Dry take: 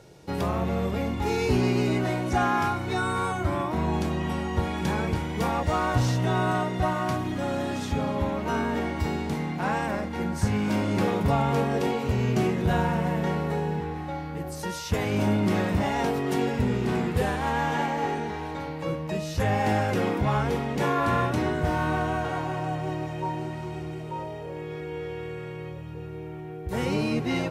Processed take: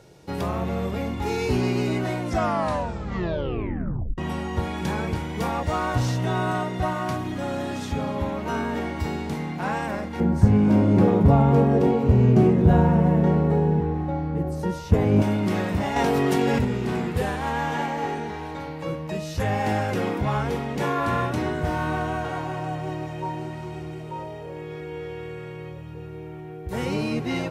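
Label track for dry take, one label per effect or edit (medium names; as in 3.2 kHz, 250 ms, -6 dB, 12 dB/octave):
2.190000	2.190000	tape stop 1.99 s
10.200000	15.220000	tilt shelf lows +9 dB, about 1.1 kHz
15.960000	16.650000	level flattener amount 100%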